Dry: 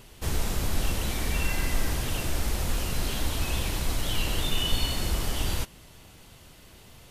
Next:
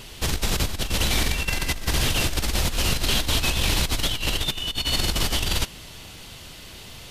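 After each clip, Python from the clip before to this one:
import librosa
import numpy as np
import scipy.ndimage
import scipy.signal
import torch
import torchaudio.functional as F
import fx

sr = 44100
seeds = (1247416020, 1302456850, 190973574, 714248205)

y = fx.peak_eq(x, sr, hz=3800.0, db=7.0, octaves=1.8)
y = fx.over_compress(y, sr, threshold_db=-27.0, ratio=-0.5)
y = y * librosa.db_to_amplitude(4.5)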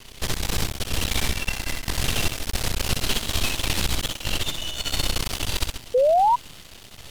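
y = fx.echo_multitap(x, sr, ms=(64, 132, 569), db=(-4.5, -9.5, -19.5))
y = np.maximum(y, 0.0)
y = fx.spec_paint(y, sr, seeds[0], shape='rise', start_s=5.94, length_s=0.42, low_hz=480.0, high_hz=1000.0, level_db=-17.0)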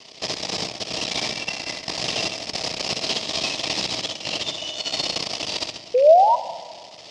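y = fx.rattle_buzz(x, sr, strikes_db=-33.0, level_db=-28.0)
y = fx.cabinet(y, sr, low_hz=220.0, low_slope=12, high_hz=6500.0, hz=(660.0, 1500.0, 5100.0), db=(8, -10, 9))
y = fx.room_shoebox(y, sr, seeds[1], volume_m3=2200.0, walls='mixed', distance_m=0.51)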